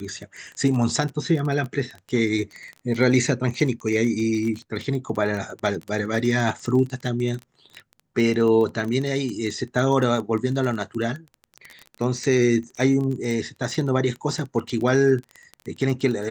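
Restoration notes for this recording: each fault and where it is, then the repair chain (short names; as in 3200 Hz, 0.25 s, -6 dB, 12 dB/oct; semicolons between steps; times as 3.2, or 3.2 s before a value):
crackle 21/s -27 dBFS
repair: de-click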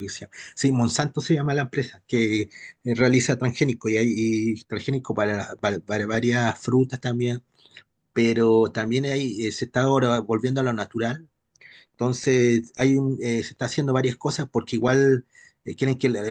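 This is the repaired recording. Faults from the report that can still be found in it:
none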